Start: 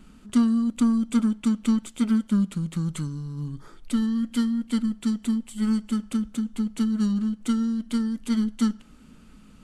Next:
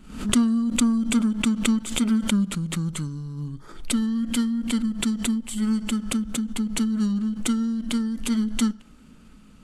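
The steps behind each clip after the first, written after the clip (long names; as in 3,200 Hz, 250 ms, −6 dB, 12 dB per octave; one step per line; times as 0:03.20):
background raised ahead of every attack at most 93 dB per second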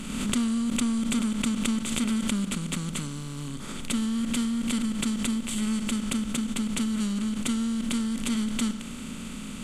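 compressor on every frequency bin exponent 0.4
level −8.5 dB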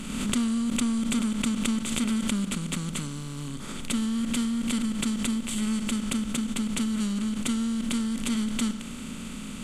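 no processing that can be heard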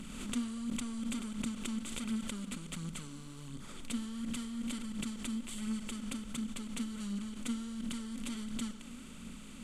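flanger 1.4 Hz, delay 0 ms, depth 4.4 ms, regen +44%
level −7.5 dB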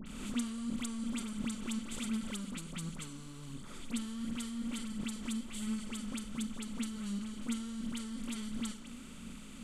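all-pass dispersion highs, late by 63 ms, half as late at 1,900 Hz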